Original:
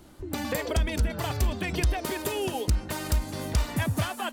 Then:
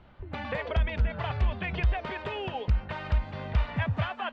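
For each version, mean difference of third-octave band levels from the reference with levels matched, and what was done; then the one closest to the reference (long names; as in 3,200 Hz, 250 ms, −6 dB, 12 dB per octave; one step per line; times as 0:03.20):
8.5 dB: low-pass filter 3,000 Hz 24 dB per octave
parametric band 310 Hz −14.5 dB 0.67 octaves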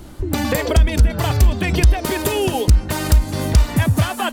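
2.0 dB: low-shelf EQ 120 Hz +8.5 dB
in parallel at +3 dB: downward compressor, threshold −26 dBFS, peak gain reduction 13 dB
on the sum: level +3 dB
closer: second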